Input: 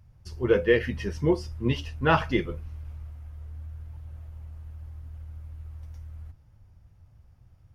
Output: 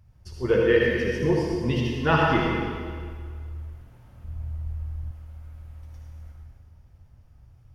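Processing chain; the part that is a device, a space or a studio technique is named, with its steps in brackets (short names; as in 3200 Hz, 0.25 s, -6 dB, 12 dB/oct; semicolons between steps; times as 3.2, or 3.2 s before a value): stairwell (reverb RT60 1.9 s, pre-delay 56 ms, DRR -2 dB); 4.24–5.11 low shelf 170 Hz +10.5 dB; gain -1 dB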